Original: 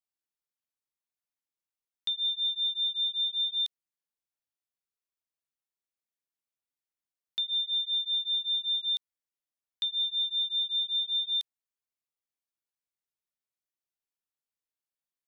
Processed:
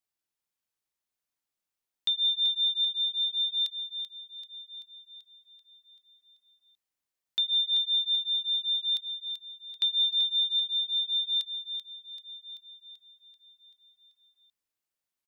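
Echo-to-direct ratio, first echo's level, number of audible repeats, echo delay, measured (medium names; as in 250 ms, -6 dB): -6.5 dB, -8.5 dB, 6, 386 ms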